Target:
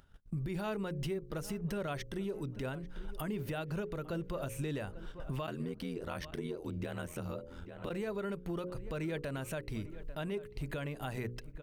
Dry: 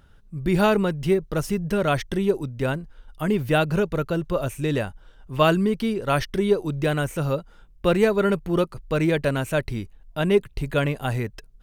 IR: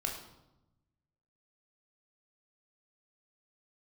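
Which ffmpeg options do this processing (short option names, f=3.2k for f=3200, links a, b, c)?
-filter_complex "[0:a]bandreject=f=60:t=h:w=6,bandreject=f=120:t=h:w=6,bandreject=f=180:t=h:w=6,bandreject=f=240:t=h:w=6,bandreject=f=300:t=h:w=6,bandreject=f=360:t=h:w=6,bandreject=f=420:t=h:w=6,bandreject=f=480:t=h:w=6,bandreject=f=540:t=h:w=6,agate=range=-51dB:threshold=-46dB:ratio=16:detection=peak,acompressor=threshold=-40dB:ratio=3,asplit=3[a][b][c];[a]afade=t=out:st=5.46:d=0.02[d];[b]aeval=exprs='val(0)*sin(2*PI*42*n/s)':c=same,afade=t=in:st=5.46:d=0.02,afade=t=out:st=7.89:d=0.02[e];[c]afade=t=in:st=7.89:d=0.02[f];[d][e][f]amix=inputs=3:normalize=0,asplit=2[g][h];[h]adelay=843,lowpass=f=2.5k:p=1,volume=-20dB,asplit=2[i][j];[j]adelay=843,lowpass=f=2.5k:p=1,volume=0.42,asplit=2[k][l];[l]adelay=843,lowpass=f=2.5k:p=1,volume=0.42[m];[g][i][k][m]amix=inputs=4:normalize=0,acompressor=mode=upward:threshold=-41dB:ratio=2.5,alimiter=level_in=9.5dB:limit=-24dB:level=0:latency=1:release=126,volume=-9.5dB,volume=4.5dB"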